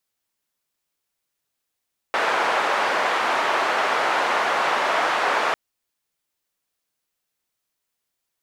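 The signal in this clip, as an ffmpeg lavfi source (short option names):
-f lavfi -i "anoisesrc=c=white:d=3.4:r=44100:seed=1,highpass=f=650,lowpass=f=1200,volume=-1.5dB"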